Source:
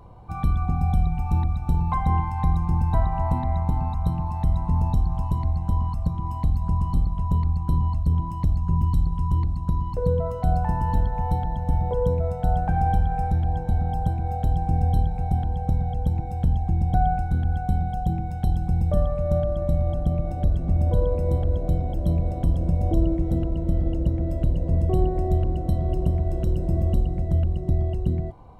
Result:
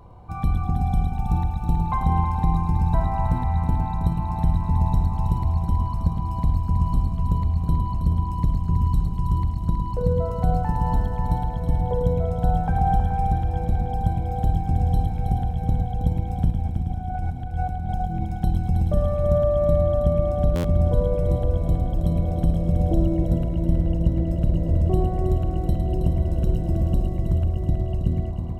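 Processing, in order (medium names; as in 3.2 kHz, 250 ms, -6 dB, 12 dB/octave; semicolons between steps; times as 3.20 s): 16.50–18.25 s: compressor with a negative ratio -28 dBFS, ratio -1; on a send: multi-head delay 107 ms, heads first and third, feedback 65%, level -8 dB; on the sum: buffer glitch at 20.55 s, samples 512, times 7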